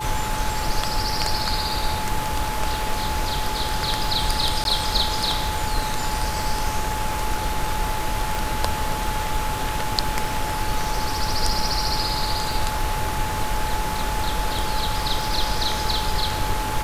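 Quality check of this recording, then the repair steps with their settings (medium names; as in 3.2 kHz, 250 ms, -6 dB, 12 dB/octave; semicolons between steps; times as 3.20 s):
crackle 54 per s -28 dBFS
whine 860 Hz -28 dBFS
4.64–4.65 s: dropout 12 ms
8.35 s: pop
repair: de-click; band-stop 860 Hz, Q 30; interpolate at 4.64 s, 12 ms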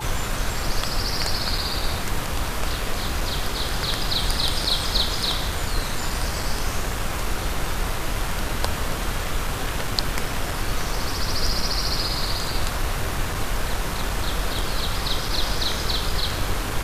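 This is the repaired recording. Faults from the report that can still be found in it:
nothing left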